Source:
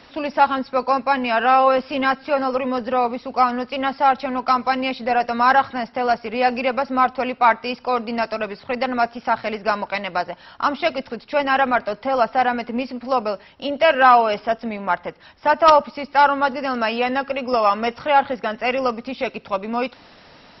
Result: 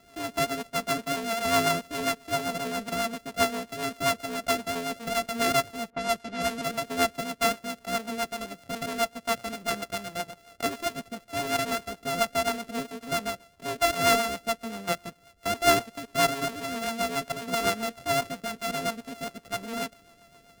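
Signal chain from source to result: sample sorter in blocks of 64 samples; 5.9–6.63 low-pass opened by the level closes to 1300 Hz, open at -15.5 dBFS; rotary speaker horn 7.5 Hz; gain -6.5 dB

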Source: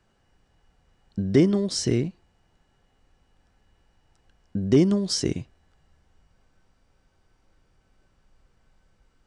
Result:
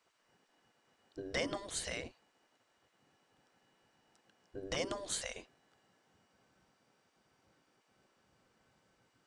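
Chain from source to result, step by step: spectral gate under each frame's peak -15 dB weak; gain -1.5 dB

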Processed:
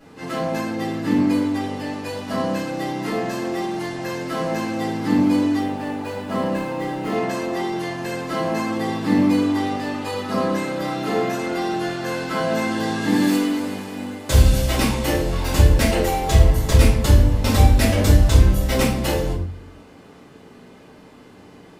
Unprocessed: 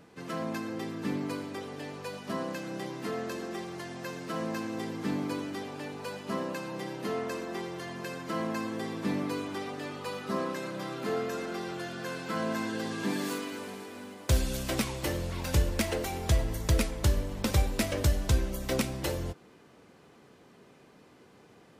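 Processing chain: 5.58–7.12 median filter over 9 samples; shoebox room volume 68 m³, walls mixed, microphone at 2.3 m

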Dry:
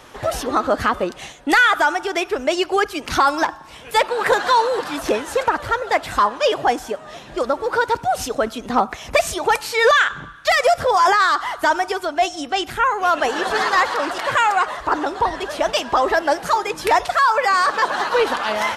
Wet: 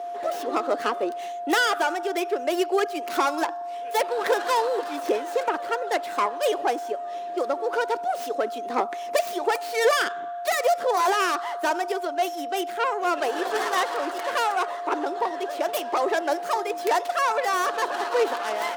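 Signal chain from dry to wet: tracing distortion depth 0.26 ms; whine 700 Hz -23 dBFS; ladder high-pass 290 Hz, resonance 45%

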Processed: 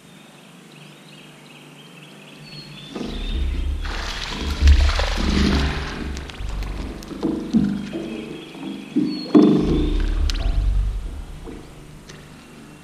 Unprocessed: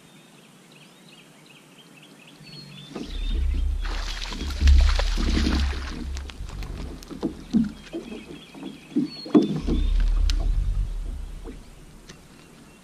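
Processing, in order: spring tank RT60 1.1 s, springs 40 ms, chirp 25 ms, DRR 0 dB; gain +3.5 dB

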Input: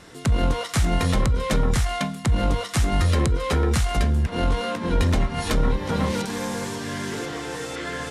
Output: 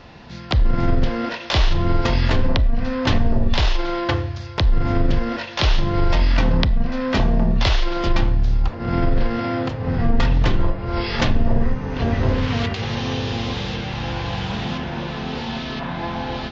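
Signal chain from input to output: wide varispeed 0.491×; dynamic EQ 3200 Hz, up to +4 dB, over -46 dBFS, Q 2; gain +4 dB

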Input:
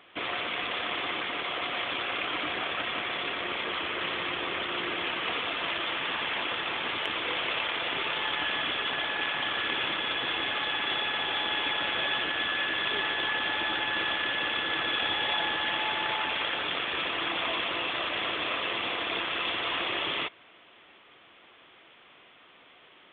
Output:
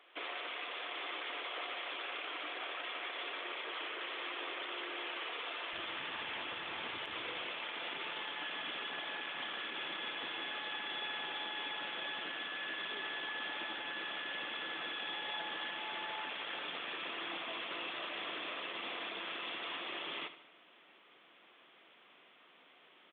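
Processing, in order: HPF 330 Hz 24 dB/oct, from 5.73 s 51 Hz, from 7.42 s 160 Hz; limiter -25 dBFS, peak gain reduction 9 dB; feedback echo 74 ms, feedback 48%, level -13 dB; gain -7.5 dB

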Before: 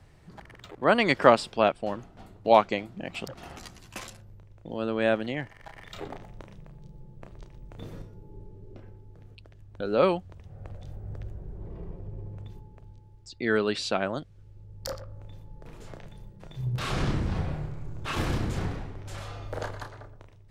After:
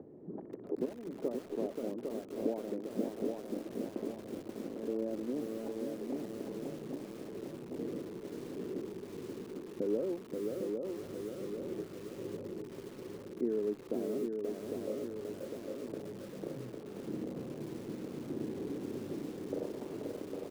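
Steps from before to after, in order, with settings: compressor 8:1, threshold -41 dBFS, peak gain reduction 28 dB; sample leveller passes 1; upward compressor, threshold -46 dBFS; chopper 0.82 Hz, depth 65%, duty 70%; Butterworth band-pass 330 Hz, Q 1.4; on a send: feedback echo 0.804 s, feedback 57%, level -4.5 dB; on the sum: lo-fi delay 0.531 s, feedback 35%, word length 10-bit, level -4 dB; gain +9.5 dB

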